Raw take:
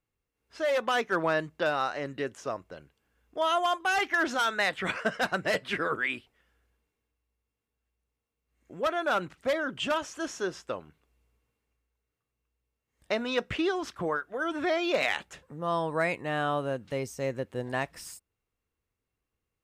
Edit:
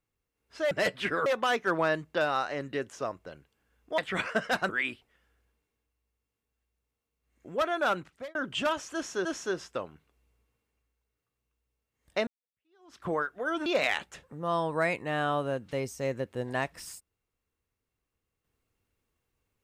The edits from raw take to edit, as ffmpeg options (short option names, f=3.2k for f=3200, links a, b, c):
-filter_complex "[0:a]asplit=9[a][b][c][d][e][f][g][h][i];[a]atrim=end=0.712[j];[b]atrim=start=5.388:end=5.942[k];[c]atrim=start=0.708:end=3.432[l];[d]atrim=start=4.678:end=5.392[m];[e]atrim=start=5.938:end=9.6,asetpts=PTS-STARTPTS,afade=t=out:st=3.222:d=0.44[n];[f]atrim=start=9.6:end=10.502,asetpts=PTS-STARTPTS,afade=t=in:d=0.004:c=hsin[o];[g]atrim=start=10.188:end=13.21,asetpts=PTS-STARTPTS,afade=t=out:st=3.018:d=0.004:c=hsin[p];[h]atrim=start=13.21:end=14.602,asetpts=PTS-STARTPTS,afade=t=in:d=0.77:c=exp[q];[i]atrim=start=14.848[r];[j][k]acrossfade=d=0.004:c1=hsin:c2=hsin[s];[s][l]acrossfade=d=0.004:c1=hsin:c2=hsin[t];[t][m]acrossfade=d=0.004:c1=hsin:c2=hsin[u];[n][o]concat=n=2:v=0:a=1[v];[u][v]acrossfade=d=0.004:c1=hsin:c2=hsin[w];[p][q]concat=n=2:v=0:a=1[x];[w][x]acrossfade=d=0.004:c1=hsin:c2=hsin[y];[y][r]acrossfade=d=0.004:c1=hsin:c2=hsin"